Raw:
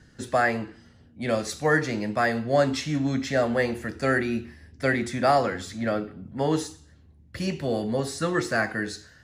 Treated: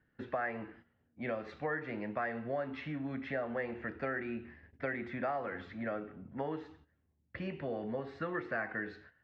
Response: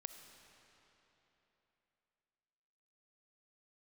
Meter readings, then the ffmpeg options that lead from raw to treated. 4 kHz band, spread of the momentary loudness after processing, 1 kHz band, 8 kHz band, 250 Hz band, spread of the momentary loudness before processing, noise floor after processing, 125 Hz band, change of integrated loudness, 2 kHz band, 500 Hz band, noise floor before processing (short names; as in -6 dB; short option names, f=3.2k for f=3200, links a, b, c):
-21.5 dB, 8 LU, -13.0 dB, under -40 dB, -13.0 dB, 10 LU, -76 dBFS, -15.5 dB, -13.0 dB, -11.5 dB, -13.0 dB, -55 dBFS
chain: -af "agate=range=-12dB:threshold=-48dB:ratio=16:detection=peak,lowpass=f=2.5k:w=0.5412,lowpass=f=2.5k:w=1.3066,acompressor=threshold=-28dB:ratio=6,lowshelf=f=250:g=-8.5,volume=-3.5dB"